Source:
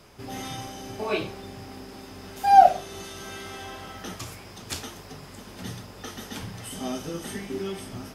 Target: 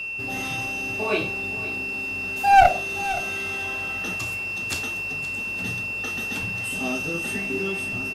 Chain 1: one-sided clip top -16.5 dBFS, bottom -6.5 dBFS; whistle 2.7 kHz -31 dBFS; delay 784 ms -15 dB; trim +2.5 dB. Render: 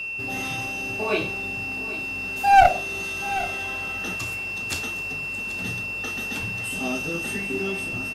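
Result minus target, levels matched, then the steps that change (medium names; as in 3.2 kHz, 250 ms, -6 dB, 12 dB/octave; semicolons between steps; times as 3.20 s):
echo 264 ms late
change: delay 520 ms -15 dB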